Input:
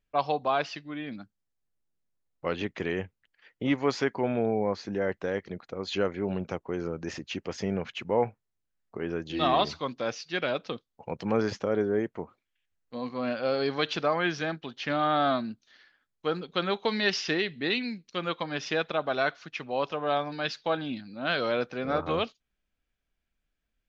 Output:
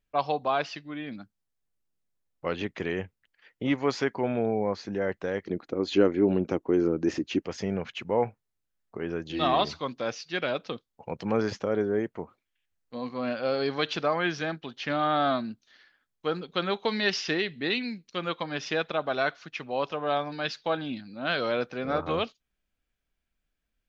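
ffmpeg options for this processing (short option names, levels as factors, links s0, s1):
-filter_complex "[0:a]asettb=1/sr,asplit=3[s0][s1][s2];[s0]atrim=end=5.464[s3];[s1]atrim=start=5.46:end=7.42,asetpts=PTS-STARTPTS,afade=t=in:d=0.004:c=qsin,afade=t=out:st=1.956:d=0.004:c=qsin,equalizer=f=310:w=1.5:g=13[s4];[s2]atrim=start=7.416[s5];[s3][s4]acrossfade=d=0.004:c1=hsin:c2=qsin[s6];[s6][s5]acrossfade=d=0.004:c1=qsin:c2=hsin"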